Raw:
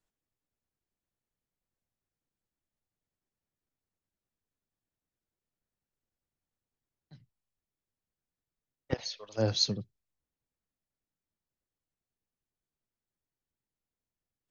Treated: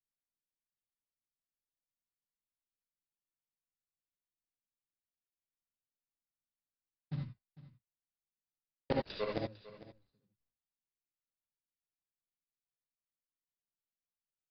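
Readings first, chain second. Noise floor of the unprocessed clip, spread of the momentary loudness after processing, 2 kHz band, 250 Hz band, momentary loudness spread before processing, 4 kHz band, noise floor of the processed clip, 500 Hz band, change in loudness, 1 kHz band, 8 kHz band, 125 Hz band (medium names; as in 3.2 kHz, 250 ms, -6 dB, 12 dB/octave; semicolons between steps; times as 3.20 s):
under -85 dBFS, 20 LU, -1.5 dB, -4.0 dB, 11 LU, -17.5 dB, under -85 dBFS, -2.5 dB, -8.0 dB, +2.0 dB, no reading, -6.0 dB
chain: median filter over 41 samples; expander -58 dBFS; treble shelf 4.3 kHz +8.5 dB; in parallel at +1.5 dB: compression, threshold -39 dBFS, peak gain reduction 14 dB; on the sum: short-mantissa float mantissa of 2-bit; inverted gate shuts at -30 dBFS, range -38 dB; on a send: delay 451 ms -17.5 dB; on the sum: gated-style reverb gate 100 ms rising, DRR 0 dB; resampled via 11.025 kHz; trim +7 dB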